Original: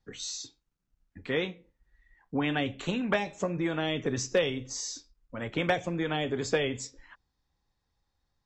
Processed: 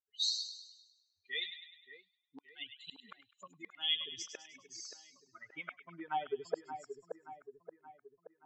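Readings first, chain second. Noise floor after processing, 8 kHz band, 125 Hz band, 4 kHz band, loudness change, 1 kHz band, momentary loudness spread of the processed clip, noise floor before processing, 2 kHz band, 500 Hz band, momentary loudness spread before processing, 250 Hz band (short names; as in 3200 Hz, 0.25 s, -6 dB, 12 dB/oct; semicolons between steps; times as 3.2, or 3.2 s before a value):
-84 dBFS, -9.5 dB, -30.0 dB, 0.0 dB, -9.0 dB, -7.0 dB, 24 LU, -81 dBFS, -12.5 dB, -15.0 dB, 11 LU, -24.0 dB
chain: per-bin expansion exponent 3; flipped gate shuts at -25 dBFS, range -40 dB; random-step tremolo 3.5 Hz, depth 55%; band-pass sweep 4100 Hz -> 790 Hz, 3.43–6.5; on a send: split-band echo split 1800 Hz, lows 0.576 s, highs 0.102 s, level -9 dB; on the sum: gain +13 dB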